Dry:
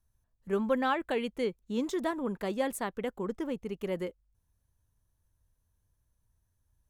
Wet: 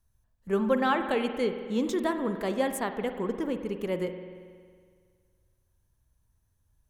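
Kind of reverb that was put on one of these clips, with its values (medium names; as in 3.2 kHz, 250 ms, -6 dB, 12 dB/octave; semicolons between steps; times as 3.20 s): spring tank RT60 1.9 s, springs 46 ms, chirp 50 ms, DRR 7.5 dB; trim +3 dB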